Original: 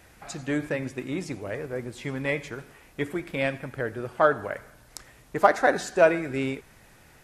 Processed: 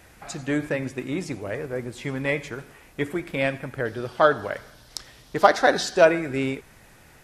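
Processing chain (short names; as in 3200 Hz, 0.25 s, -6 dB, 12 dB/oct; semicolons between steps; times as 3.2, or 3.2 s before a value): 3.85–6.05 band shelf 4200 Hz +8.5 dB 1.1 oct; gain +2.5 dB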